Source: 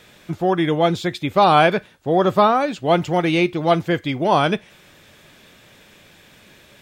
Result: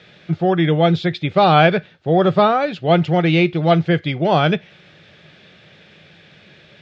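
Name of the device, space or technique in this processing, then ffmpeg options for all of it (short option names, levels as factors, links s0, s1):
guitar cabinet: -af "highpass=79,equalizer=f=160:t=q:w=4:g=7,equalizer=f=260:t=q:w=4:g=-7,equalizer=f=1000:t=q:w=4:g=-9,lowpass=f=4600:w=0.5412,lowpass=f=4600:w=1.3066,volume=1.33"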